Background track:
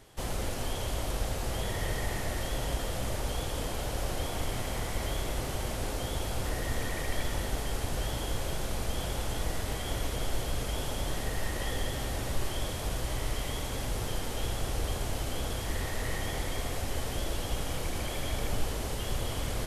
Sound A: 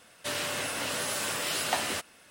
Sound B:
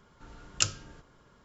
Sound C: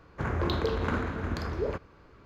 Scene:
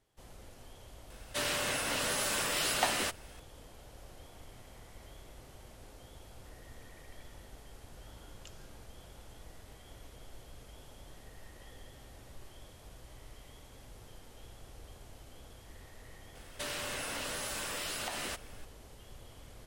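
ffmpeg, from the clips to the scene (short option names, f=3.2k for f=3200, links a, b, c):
-filter_complex "[1:a]asplit=2[a][b];[0:a]volume=-19.5dB[c];[2:a]acompressor=threshold=-42dB:ratio=6:attack=3.2:release=140:knee=1:detection=peak[d];[b]acompressor=threshold=-33dB:ratio=6:attack=3.2:release=140:knee=1:detection=peak[e];[a]atrim=end=2.3,asetpts=PTS-STARTPTS,volume=-1dB,afade=t=in:d=0.004:c=hsin,afade=t=out:st=2.296:d=0.004:c=hsin,adelay=1100[f];[d]atrim=end=1.44,asetpts=PTS-STARTPTS,volume=-9.5dB,afade=t=in:d=0.004:c=hsin,afade=t=out:st=1.436:d=0.004:c=hsin,adelay=7850[g];[e]atrim=end=2.3,asetpts=PTS-STARTPTS,volume=-1.5dB,afade=t=in:d=0.004:c=hsin,afade=t=out:st=2.296:d=0.004:c=hsin,adelay=16350[h];[c][f][g][h]amix=inputs=4:normalize=0"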